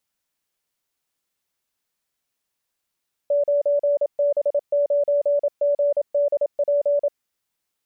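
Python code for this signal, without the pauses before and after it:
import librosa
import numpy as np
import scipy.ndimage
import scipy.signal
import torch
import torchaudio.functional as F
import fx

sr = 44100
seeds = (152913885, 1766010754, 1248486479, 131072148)

y = fx.morse(sr, text='9B9GDP', wpm=27, hz=576.0, level_db=-16.0)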